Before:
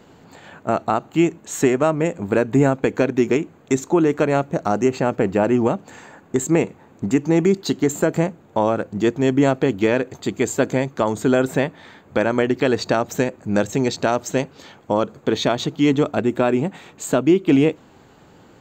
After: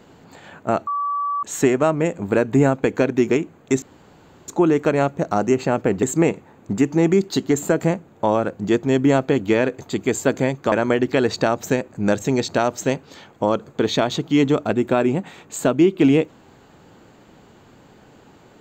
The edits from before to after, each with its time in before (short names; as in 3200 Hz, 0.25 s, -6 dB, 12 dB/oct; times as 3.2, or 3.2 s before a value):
0.87–1.43 bleep 1150 Hz -20 dBFS
3.82 insert room tone 0.66 s
5.37–6.36 cut
11.05–12.2 cut